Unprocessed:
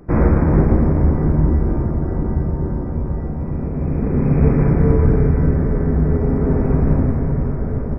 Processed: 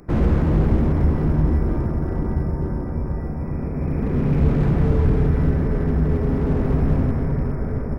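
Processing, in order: high shelf 2300 Hz +12 dB; slew limiter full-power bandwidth 49 Hz; gain -3 dB

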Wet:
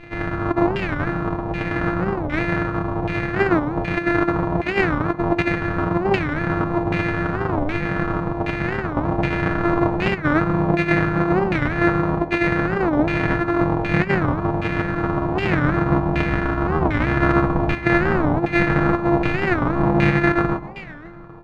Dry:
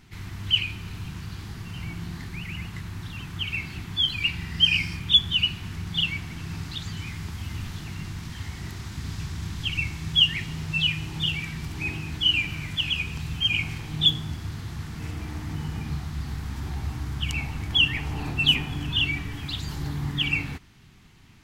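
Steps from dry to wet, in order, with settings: sample sorter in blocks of 128 samples; comb 6.3 ms, depth 70%; negative-ratio compressor -25 dBFS, ratio -0.5; echo with dull and thin repeats by turns 0.134 s, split 1600 Hz, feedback 69%, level -12 dB; LFO low-pass saw down 1.3 Hz 810–2500 Hz; record warp 45 rpm, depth 250 cents; gain +8 dB

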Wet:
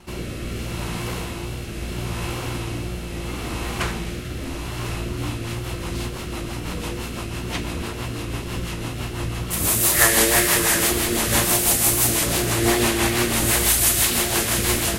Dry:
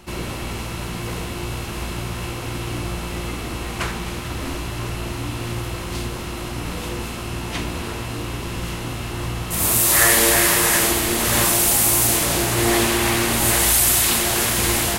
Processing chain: wow and flutter 41 cents; rotary speaker horn 0.75 Hz, later 6 Hz, at 4.73; gain +1 dB

